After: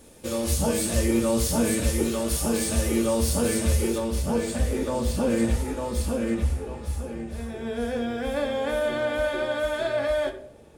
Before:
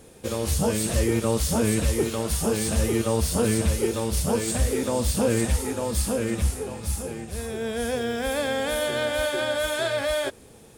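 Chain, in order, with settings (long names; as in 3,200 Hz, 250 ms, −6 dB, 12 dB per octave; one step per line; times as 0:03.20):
high-shelf EQ 4,300 Hz +3.5 dB, from 0:03.98 −7 dB, from 0:06.34 −12 dB
convolution reverb RT60 0.65 s, pre-delay 3 ms, DRR 2 dB
level −3.5 dB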